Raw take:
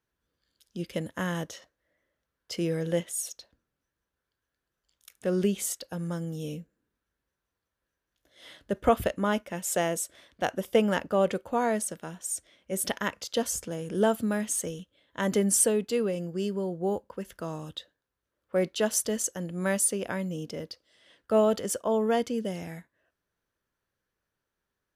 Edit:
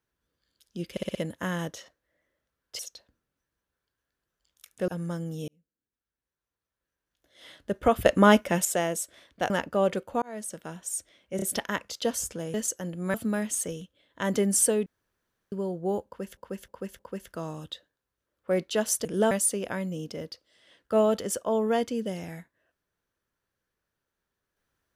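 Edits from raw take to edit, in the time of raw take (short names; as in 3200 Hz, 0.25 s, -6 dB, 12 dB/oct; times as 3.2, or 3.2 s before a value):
0.91 stutter 0.06 s, 5 plays
2.55–3.23 cut
5.32–5.89 cut
6.49–8.57 fade in
9.07–9.66 gain +9.5 dB
10.51–10.88 cut
11.6–12.02 fade in
12.74 stutter 0.03 s, 3 plays
13.86–14.12 swap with 19.1–19.7
15.84–16.5 room tone
17.04–17.35 loop, 4 plays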